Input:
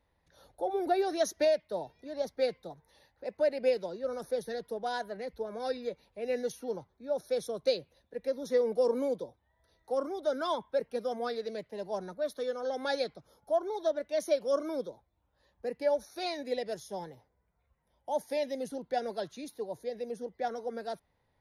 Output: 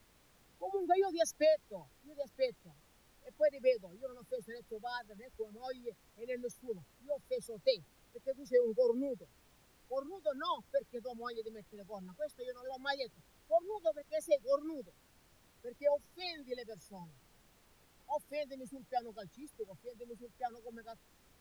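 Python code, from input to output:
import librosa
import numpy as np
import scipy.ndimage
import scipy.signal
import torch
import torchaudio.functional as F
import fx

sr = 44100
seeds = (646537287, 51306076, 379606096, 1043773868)

y = fx.bin_expand(x, sr, power=2.0)
y = fx.dmg_noise_colour(y, sr, seeds[0], colour='pink', level_db=-66.0)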